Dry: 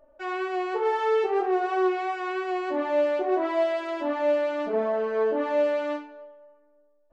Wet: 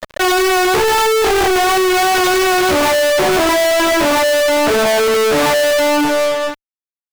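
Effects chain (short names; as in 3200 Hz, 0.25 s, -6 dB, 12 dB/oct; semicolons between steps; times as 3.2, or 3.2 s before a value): 1.69–2.96 CVSD 32 kbps; fuzz box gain 45 dB, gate -52 dBFS; sample leveller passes 5; gain -1.5 dB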